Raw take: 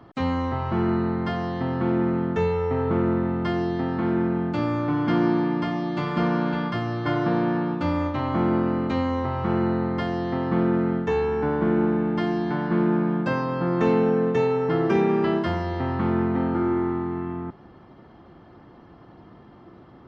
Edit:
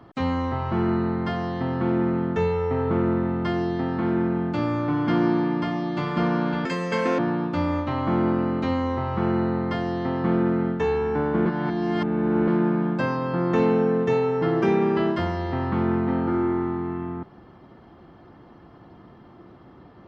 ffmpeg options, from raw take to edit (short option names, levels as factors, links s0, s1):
-filter_complex "[0:a]asplit=5[s0][s1][s2][s3][s4];[s0]atrim=end=6.654[s5];[s1]atrim=start=6.65:end=7.46,asetpts=PTS-STARTPTS,asetrate=66591,aresample=44100,atrim=end_sample=23656,asetpts=PTS-STARTPTS[s6];[s2]atrim=start=7.456:end=11.732[s7];[s3]atrim=start=11.728:end=12.752,asetpts=PTS-STARTPTS,areverse[s8];[s4]atrim=start=12.748[s9];[s5][s6]acrossfade=d=0.004:c1=hsin:c2=hsin[s10];[s10][s7]acrossfade=d=0.004:c1=hsin:c2=hsin[s11];[s11][s8]acrossfade=d=0.004:c1=hsin:c2=hsin[s12];[s12][s9]acrossfade=d=0.004:c1=hsin:c2=hsin"